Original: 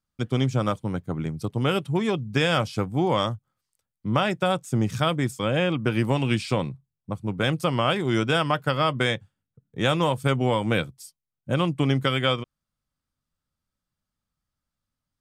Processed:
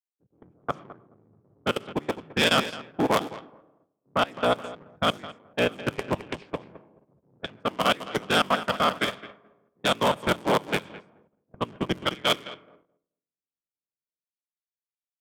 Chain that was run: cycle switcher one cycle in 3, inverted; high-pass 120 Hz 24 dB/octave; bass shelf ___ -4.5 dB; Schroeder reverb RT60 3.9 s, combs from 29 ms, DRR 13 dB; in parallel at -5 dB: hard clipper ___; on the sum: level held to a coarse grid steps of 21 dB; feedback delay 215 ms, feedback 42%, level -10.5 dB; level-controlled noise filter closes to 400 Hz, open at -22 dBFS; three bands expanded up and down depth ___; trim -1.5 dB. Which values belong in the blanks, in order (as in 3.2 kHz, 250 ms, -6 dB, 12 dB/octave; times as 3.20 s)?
380 Hz, -21.5 dBFS, 100%